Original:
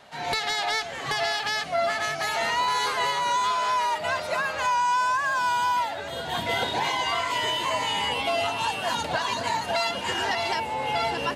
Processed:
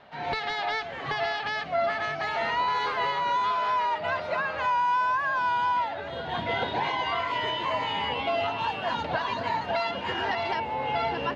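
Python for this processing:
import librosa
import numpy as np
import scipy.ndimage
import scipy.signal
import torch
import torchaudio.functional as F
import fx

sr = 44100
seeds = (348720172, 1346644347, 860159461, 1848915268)

y = fx.air_absorb(x, sr, metres=270.0)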